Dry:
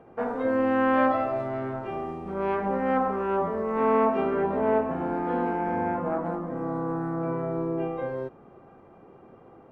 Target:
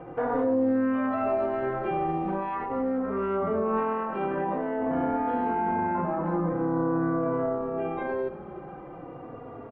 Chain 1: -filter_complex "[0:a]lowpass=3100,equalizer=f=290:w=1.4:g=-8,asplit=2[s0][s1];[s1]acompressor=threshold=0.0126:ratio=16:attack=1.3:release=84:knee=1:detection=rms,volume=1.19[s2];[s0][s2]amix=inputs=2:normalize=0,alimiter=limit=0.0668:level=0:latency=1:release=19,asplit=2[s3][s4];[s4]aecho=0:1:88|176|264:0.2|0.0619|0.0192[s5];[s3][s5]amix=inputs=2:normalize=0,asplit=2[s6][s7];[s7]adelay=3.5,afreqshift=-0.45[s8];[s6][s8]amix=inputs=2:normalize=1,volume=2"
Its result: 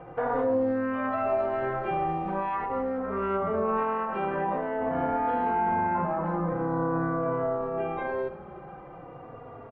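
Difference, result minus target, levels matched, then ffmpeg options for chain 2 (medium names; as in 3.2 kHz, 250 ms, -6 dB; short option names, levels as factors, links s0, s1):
250 Hz band -3.5 dB
-filter_complex "[0:a]lowpass=3100,asplit=2[s0][s1];[s1]acompressor=threshold=0.0126:ratio=16:attack=1.3:release=84:knee=1:detection=rms,volume=1.19[s2];[s0][s2]amix=inputs=2:normalize=0,alimiter=limit=0.0668:level=0:latency=1:release=19,asplit=2[s3][s4];[s4]aecho=0:1:88|176|264:0.2|0.0619|0.0192[s5];[s3][s5]amix=inputs=2:normalize=0,asplit=2[s6][s7];[s7]adelay=3.5,afreqshift=-0.45[s8];[s6][s8]amix=inputs=2:normalize=1,volume=2"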